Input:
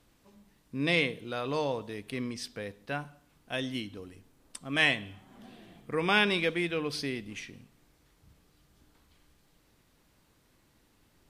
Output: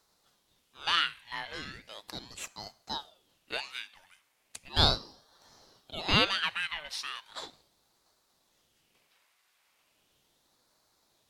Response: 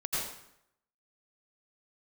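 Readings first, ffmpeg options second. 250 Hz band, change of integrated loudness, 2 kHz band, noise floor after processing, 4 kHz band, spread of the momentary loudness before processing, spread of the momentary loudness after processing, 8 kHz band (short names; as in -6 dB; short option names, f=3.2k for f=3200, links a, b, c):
-8.5 dB, -0.5 dB, -4.0 dB, -73 dBFS, +4.5 dB, 19 LU, 19 LU, +1.5 dB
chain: -af "highpass=f=1.5k:t=q:w=1.7,aeval=exprs='val(0)*sin(2*PI*1500*n/s+1500*0.7/0.37*sin(2*PI*0.37*n/s))':c=same,volume=1.5dB"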